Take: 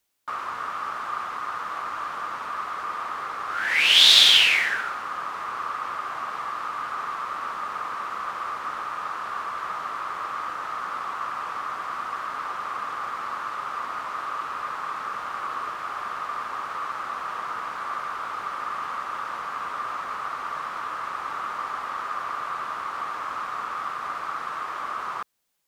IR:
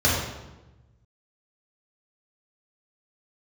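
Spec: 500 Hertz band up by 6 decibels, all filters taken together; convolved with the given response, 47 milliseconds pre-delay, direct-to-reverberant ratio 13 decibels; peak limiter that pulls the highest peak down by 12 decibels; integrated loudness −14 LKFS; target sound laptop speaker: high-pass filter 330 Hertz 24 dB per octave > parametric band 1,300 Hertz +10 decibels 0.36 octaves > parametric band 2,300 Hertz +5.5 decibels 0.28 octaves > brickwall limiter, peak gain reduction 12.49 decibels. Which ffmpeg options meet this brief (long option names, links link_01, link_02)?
-filter_complex "[0:a]equalizer=frequency=500:width_type=o:gain=7.5,alimiter=limit=-14dB:level=0:latency=1,asplit=2[link_01][link_02];[1:a]atrim=start_sample=2205,adelay=47[link_03];[link_02][link_03]afir=irnorm=-1:irlink=0,volume=-30.5dB[link_04];[link_01][link_04]amix=inputs=2:normalize=0,highpass=frequency=330:width=0.5412,highpass=frequency=330:width=1.3066,equalizer=frequency=1300:width_type=o:width=0.36:gain=10,equalizer=frequency=2300:width_type=o:width=0.28:gain=5.5,volume=15dB,alimiter=limit=-7dB:level=0:latency=1"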